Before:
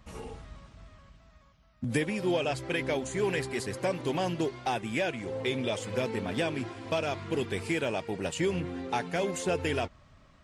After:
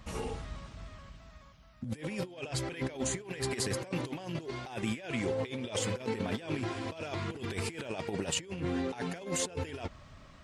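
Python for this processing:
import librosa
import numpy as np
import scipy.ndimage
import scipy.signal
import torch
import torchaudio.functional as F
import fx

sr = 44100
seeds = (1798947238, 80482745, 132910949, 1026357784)

y = fx.peak_eq(x, sr, hz=5200.0, db=2.0, octaves=2.2)
y = fx.over_compress(y, sr, threshold_db=-35.0, ratio=-0.5)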